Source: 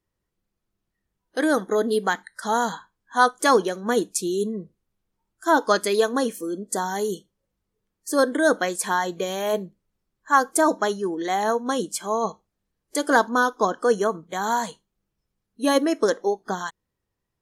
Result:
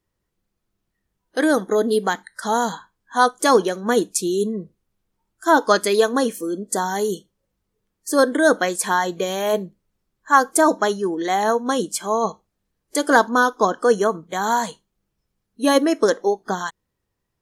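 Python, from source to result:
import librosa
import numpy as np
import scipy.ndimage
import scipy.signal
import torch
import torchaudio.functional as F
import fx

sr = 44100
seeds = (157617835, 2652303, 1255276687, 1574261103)

y = fx.dynamic_eq(x, sr, hz=1700.0, q=0.92, threshold_db=-33.0, ratio=4.0, max_db=-4, at=(1.51, 3.55))
y = y * 10.0 ** (3.5 / 20.0)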